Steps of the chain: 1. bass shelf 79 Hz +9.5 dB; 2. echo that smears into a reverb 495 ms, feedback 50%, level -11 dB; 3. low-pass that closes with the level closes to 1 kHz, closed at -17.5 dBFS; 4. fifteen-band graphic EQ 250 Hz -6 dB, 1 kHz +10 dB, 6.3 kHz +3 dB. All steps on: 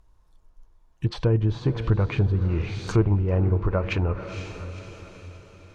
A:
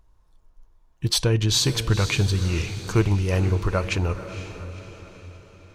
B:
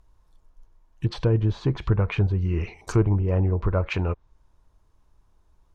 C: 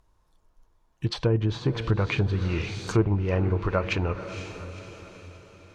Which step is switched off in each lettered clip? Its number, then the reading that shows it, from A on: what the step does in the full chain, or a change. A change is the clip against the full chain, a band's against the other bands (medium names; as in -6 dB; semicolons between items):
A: 3, 4 kHz band +15.5 dB; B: 2, momentary loudness spread change -9 LU; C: 1, 125 Hz band -5.0 dB